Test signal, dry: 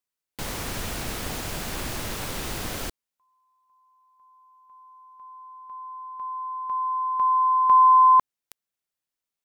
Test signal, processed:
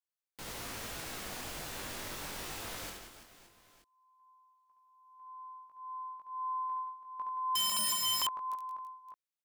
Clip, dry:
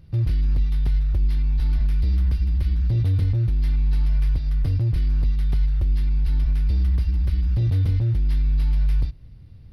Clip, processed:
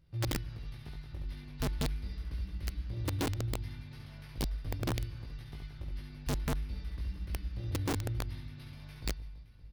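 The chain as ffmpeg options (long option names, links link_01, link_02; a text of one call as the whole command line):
ffmpeg -i in.wav -filter_complex "[0:a]lowshelf=frequency=320:gain=-7.5,flanger=delay=18:depth=2.9:speed=0.21,asplit=2[link_01][link_02];[link_02]aecho=0:1:70|175|332.5|568.8|923.1:0.631|0.398|0.251|0.158|0.1[link_03];[link_01][link_03]amix=inputs=2:normalize=0,aeval=exprs='(mod(10*val(0)+1,2)-1)/10':channel_layout=same,volume=-7.5dB" out.wav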